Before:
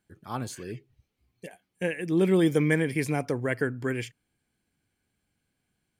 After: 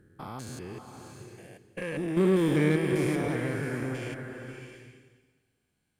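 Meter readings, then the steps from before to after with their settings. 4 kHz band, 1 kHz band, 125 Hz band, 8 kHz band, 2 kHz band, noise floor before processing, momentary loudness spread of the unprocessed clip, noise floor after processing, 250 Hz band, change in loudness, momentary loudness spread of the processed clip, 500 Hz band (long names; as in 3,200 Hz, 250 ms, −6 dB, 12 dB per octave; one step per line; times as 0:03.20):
−1.5 dB, −1.5 dB, −0.5 dB, −2.5 dB, −3.5 dB, −80 dBFS, 17 LU, −78 dBFS, −1.0 dB, −1.0 dB, 23 LU, −1.5 dB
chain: spectrum averaged block by block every 200 ms
harmonic generator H 8 −24 dB, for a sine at −13.5 dBFS
slow-attack reverb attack 680 ms, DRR 5.5 dB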